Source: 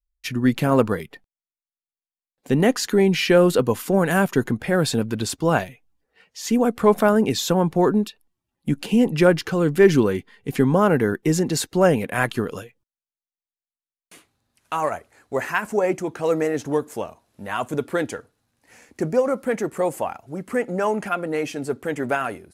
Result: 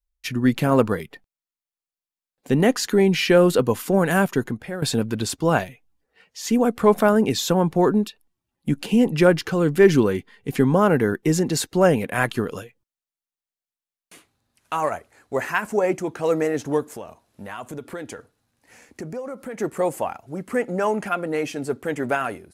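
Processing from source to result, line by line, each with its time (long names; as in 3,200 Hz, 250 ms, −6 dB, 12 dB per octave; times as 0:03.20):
0:04.21–0:04.82: fade out, to −14 dB
0:16.89–0:19.60: downward compressor 3 to 1, threshold −32 dBFS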